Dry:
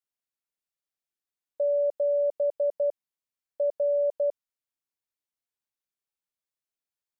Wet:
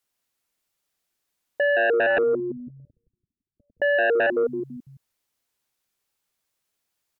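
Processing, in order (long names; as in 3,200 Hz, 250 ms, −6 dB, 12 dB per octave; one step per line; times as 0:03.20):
0:02.18–0:03.82: inverse Chebyshev low-pass filter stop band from 520 Hz, stop band 50 dB
echo with shifted repeats 167 ms, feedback 35%, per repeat −110 Hz, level −7.5 dB
sine wavefolder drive 9 dB, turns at −17 dBFS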